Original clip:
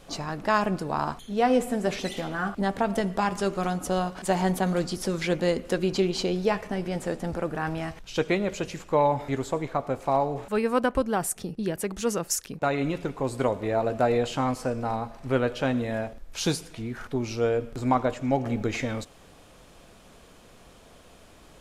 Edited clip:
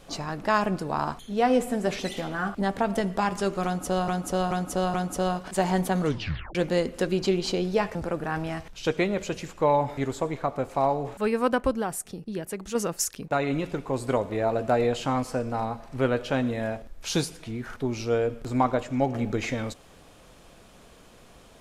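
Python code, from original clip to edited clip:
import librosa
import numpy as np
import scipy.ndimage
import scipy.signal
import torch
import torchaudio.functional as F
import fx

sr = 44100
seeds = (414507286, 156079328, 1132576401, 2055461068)

y = fx.edit(x, sr, fx.repeat(start_s=3.65, length_s=0.43, count=4),
    fx.tape_stop(start_s=4.72, length_s=0.54),
    fx.cut(start_s=6.66, length_s=0.6),
    fx.clip_gain(start_s=11.13, length_s=0.93, db=-4.0), tone=tone)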